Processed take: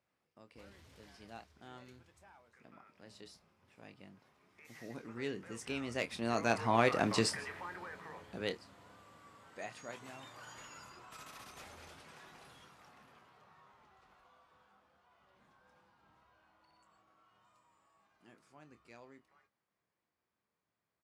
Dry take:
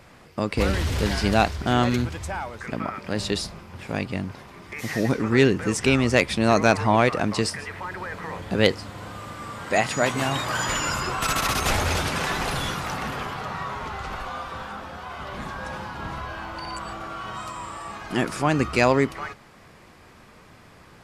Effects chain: Doppler pass-by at 7.14, 10 m/s, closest 3.1 m; HPF 160 Hz 6 dB/oct; doubler 26 ms -10 dB; gain -6 dB

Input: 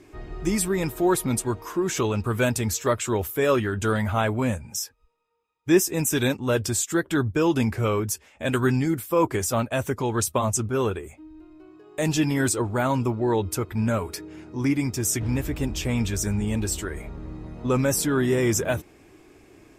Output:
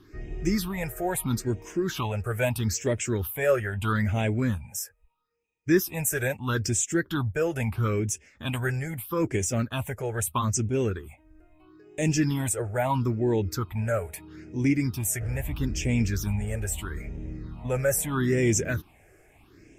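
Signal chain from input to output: phaser stages 6, 0.77 Hz, lowest notch 260–1200 Hz

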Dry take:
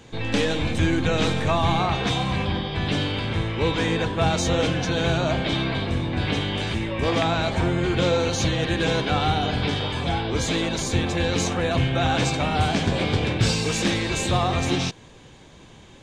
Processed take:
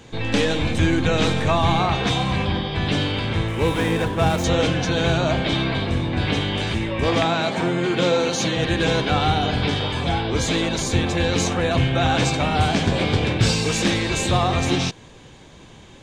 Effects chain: 3.48–4.44 median filter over 9 samples; 7.25–8.57 HPF 150 Hz 24 dB/oct; gain +2.5 dB

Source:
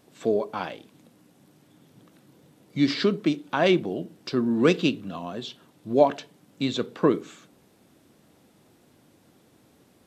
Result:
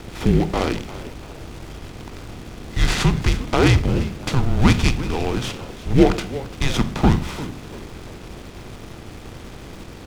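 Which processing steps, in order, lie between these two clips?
per-bin compression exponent 0.6; frequency shift -250 Hz; frequency-shifting echo 0.344 s, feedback 36%, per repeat +94 Hz, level -16.5 dB; in parallel at -12 dB: requantised 6-bit, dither none; on the sum: noise-modulated delay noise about 2000 Hz, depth 0.035 ms; gain +1.5 dB

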